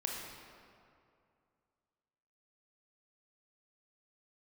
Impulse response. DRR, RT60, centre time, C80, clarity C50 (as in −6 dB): −1.0 dB, 2.4 s, 96 ms, 2.5 dB, 1.0 dB